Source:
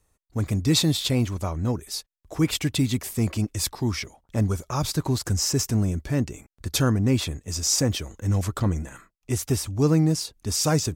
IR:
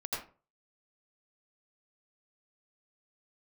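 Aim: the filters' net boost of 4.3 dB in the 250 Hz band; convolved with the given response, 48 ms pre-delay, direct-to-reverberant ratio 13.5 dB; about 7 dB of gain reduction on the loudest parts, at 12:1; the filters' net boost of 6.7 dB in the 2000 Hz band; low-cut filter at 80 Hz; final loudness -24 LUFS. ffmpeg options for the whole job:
-filter_complex "[0:a]highpass=80,equalizer=f=250:t=o:g=5.5,equalizer=f=2k:t=o:g=8.5,acompressor=threshold=-20dB:ratio=12,asplit=2[a][b];[1:a]atrim=start_sample=2205,adelay=48[c];[b][c]afir=irnorm=-1:irlink=0,volume=-16.5dB[d];[a][d]amix=inputs=2:normalize=0,volume=2.5dB"

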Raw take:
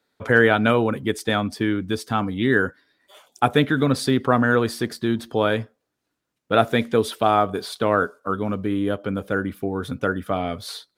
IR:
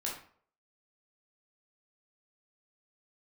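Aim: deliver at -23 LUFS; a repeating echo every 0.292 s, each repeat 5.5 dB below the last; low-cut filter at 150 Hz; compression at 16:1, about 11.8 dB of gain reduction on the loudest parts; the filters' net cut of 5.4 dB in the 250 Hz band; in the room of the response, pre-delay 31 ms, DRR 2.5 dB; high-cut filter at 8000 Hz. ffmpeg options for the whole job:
-filter_complex "[0:a]highpass=150,lowpass=8k,equalizer=f=250:t=o:g=-6,acompressor=threshold=-24dB:ratio=16,aecho=1:1:292|584|876|1168|1460|1752|2044:0.531|0.281|0.149|0.079|0.0419|0.0222|0.0118,asplit=2[a][b];[1:a]atrim=start_sample=2205,adelay=31[c];[b][c]afir=irnorm=-1:irlink=0,volume=-4.5dB[d];[a][d]amix=inputs=2:normalize=0,volume=5dB"

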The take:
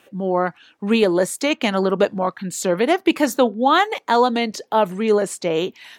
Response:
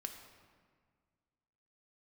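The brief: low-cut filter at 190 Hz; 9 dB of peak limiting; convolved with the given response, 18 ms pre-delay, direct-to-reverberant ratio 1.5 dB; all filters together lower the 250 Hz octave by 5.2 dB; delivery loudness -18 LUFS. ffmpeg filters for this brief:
-filter_complex "[0:a]highpass=190,equalizer=f=250:t=o:g=-5.5,alimiter=limit=-12.5dB:level=0:latency=1,asplit=2[a][b];[1:a]atrim=start_sample=2205,adelay=18[c];[b][c]afir=irnorm=-1:irlink=0,volume=1dB[d];[a][d]amix=inputs=2:normalize=0,volume=3.5dB"

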